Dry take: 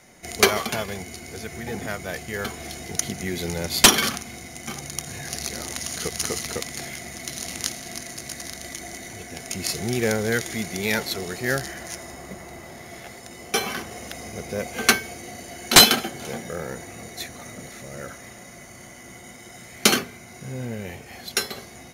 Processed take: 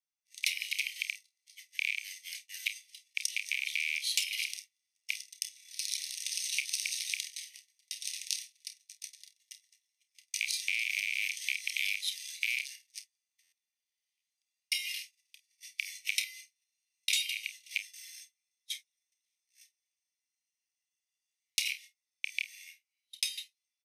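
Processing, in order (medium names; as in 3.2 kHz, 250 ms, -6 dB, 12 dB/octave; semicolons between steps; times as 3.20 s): rattle on loud lows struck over -31 dBFS, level -7 dBFS; gate -32 dBFS, range -38 dB; steep high-pass 2.4 kHz 72 dB/octave; treble shelf 4.6 kHz -4.5 dB; compression 16:1, threshold -28 dBFS, peak gain reduction 19.5 dB; early reflections 27 ms -11 dB, 45 ms -16.5 dB; tape speed -8%; buffer glitch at 13.42 s, samples 512, times 8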